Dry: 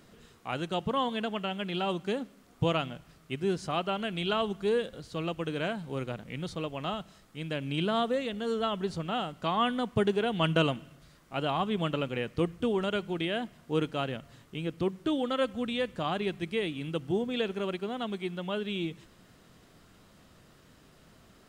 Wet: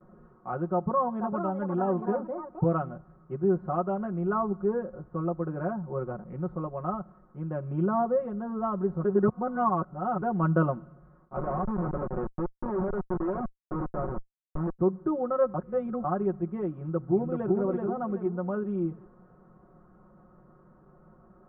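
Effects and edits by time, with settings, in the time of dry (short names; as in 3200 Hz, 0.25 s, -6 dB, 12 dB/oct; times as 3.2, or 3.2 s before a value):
0.72–2.67 echoes that change speed 0.487 s, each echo +4 st, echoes 2, each echo -6 dB
4.05–5.69 LPF 2600 Hz 24 dB/oct
9.04–10.22 reverse
11.36–14.79 Schmitt trigger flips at -32.5 dBFS
15.54–16.04 reverse
16.75–17.51 echo throw 0.38 s, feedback 40%, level -3 dB
whole clip: comb 5.5 ms, depth 97%; gate with hold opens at -47 dBFS; Chebyshev low-pass 1300 Hz, order 4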